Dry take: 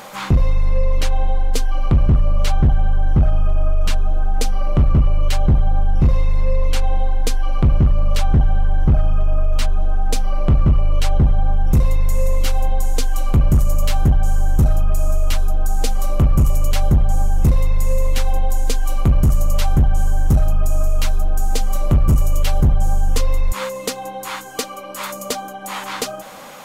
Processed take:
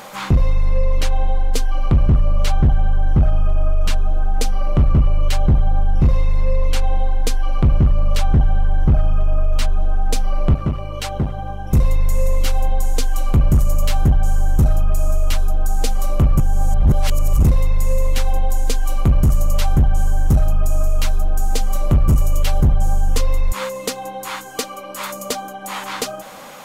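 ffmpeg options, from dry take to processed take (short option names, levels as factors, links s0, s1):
-filter_complex "[0:a]asettb=1/sr,asplit=3[s0][s1][s2];[s0]atrim=end=10.544[s3];[s1]atrim=start=10.54:end=11.73,asetpts=PTS-STARTPTS,afade=t=in:d=0.004:c=qsin,afade=t=out:st=1.186:d=0.004:c=qsin,highpass=f=170:p=1[s4];[s2]atrim=start=11.726[s5];[s3][s4]acrossfade=d=0.004:c1=hsin:c2=qsin[s6];[s6][s5]acrossfade=d=0.004:c1=qsin:c2=hsin,asplit=3[s7][s8][s9];[s7]atrim=end=16.402[s10];[s8]atrim=start=16.398:end=17.432,asetpts=PTS-STARTPTS,areverse[s11];[s9]atrim=start=17.428[s12];[s10][s11]acrossfade=d=0.004:c1=hsin:c2=hsin[s13];[s13][s12]acrossfade=d=0.004:c1=hsin:c2=hsin"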